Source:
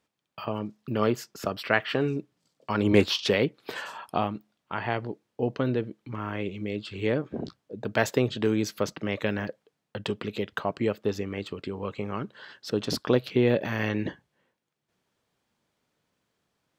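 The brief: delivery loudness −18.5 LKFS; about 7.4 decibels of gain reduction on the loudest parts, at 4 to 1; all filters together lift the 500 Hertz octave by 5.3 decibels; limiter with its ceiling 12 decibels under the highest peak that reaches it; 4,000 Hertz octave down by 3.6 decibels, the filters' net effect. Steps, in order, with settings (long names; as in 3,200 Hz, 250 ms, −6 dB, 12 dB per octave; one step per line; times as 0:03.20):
parametric band 500 Hz +6.5 dB
parametric band 4,000 Hz −5 dB
downward compressor 4 to 1, threshold −21 dBFS
level +15 dB
brickwall limiter −6 dBFS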